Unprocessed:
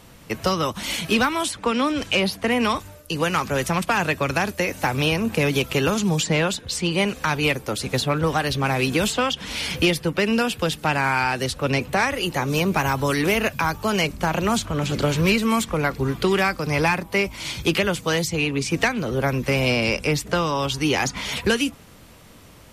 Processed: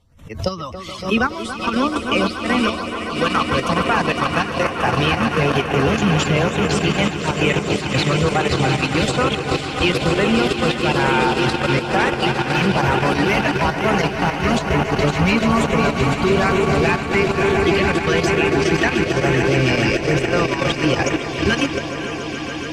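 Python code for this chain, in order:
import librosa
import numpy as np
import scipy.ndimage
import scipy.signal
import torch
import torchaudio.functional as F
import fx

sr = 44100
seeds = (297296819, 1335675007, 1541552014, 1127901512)

p1 = fx.bin_expand(x, sr, power=1.5)
p2 = fx.peak_eq(p1, sr, hz=83.0, db=11.5, octaves=0.25)
p3 = fx.echo_swell(p2, sr, ms=142, loudest=8, wet_db=-10.0)
p4 = fx.filter_lfo_notch(p3, sr, shape='sine', hz=1.1, low_hz=390.0, high_hz=4900.0, q=2.0)
p5 = fx.echo_split(p4, sr, split_hz=1600.0, low_ms=281, high_ms=508, feedback_pct=52, wet_db=-7.0)
p6 = fx.level_steps(p5, sr, step_db=23)
p7 = p5 + (p6 * 10.0 ** (3.0 / 20.0))
p8 = fx.air_absorb(p7, sr, metres=70.0)
p9 = fx.pre_swell(p8, sr, db_per_s=130.0)
y = p9 * 10.0 ** (-1.5 / 20.0)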